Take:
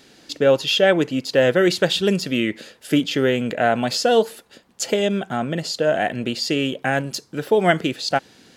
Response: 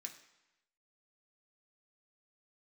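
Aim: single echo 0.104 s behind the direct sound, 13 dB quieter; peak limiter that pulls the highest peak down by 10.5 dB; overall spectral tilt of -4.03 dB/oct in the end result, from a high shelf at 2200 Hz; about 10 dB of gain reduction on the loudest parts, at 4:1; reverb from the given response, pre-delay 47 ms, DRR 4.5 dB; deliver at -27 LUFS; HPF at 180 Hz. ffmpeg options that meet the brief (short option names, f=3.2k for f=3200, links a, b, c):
-filter_complex "[0:a]highpass=180,highshelf=f=2.2k:g=-7.5,acompressor=threshold=-24dB:ratio=4,alimiter=limit=-22dB:level=0:latency=1,aecho=1:1:104:0.224,asplit=2[a][b];[1:a]atrim=start_sample=2205,adelay=47[c];[b][c]afir=irnorm=-1:irlink=0,volume=0.5dB[d];[a][d]amix=inputs=2:normalize=0,volume=3.5dB"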